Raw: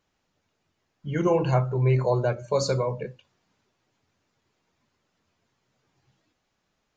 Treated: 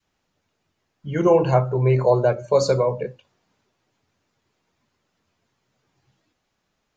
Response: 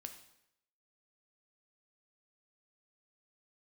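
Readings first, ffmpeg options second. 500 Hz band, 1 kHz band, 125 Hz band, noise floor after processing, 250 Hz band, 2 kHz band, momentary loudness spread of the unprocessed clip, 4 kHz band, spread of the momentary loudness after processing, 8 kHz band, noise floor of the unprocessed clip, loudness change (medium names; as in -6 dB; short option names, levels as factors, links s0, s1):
+7.0 dB, +5.5 dB, +2.0 dB, -75 dBFS, +4.0 dB, +2.5 dB, 13 LU, +1.5 dB, 11 LU, no reading, -76 dBFS, +5.0 dB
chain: -af "adynamicequalizer=threshold=0.0178:dfrequency=570:dqfactor=0.78:tfrequency=570:tqfactor=0.78:attack=5:release=100:ratio=0.375:range=3:mode=boostabove:tftype=bell,volume=1.19"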